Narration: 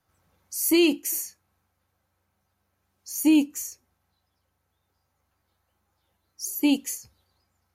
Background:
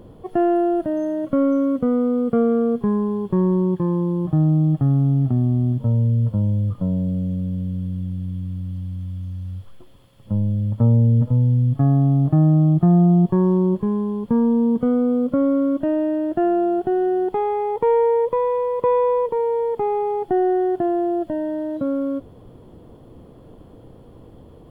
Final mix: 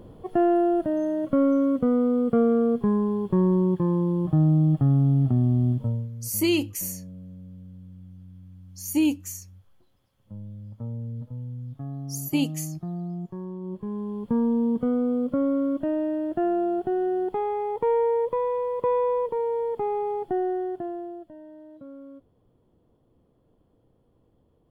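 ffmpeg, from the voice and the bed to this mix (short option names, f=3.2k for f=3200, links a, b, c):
-filter_complex "[0:a]adelay=5700,volume=-3dB[a];[1:a]volume=10.5dB,afade=t=out:st=5.7:d=0.39:silence=0.158489,afade=t=in:st=13.6:d=0.72:silence=0.223872,afade=t=out:st=20.13:d=1.16:silence=0.177828[b];[a][b]amix=inputs=2:normalize=0"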